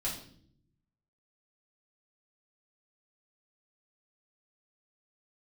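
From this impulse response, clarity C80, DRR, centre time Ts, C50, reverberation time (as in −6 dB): 10.0 dB, −6.0 dB, 30 ms, 6.0 dB, non-exponential decay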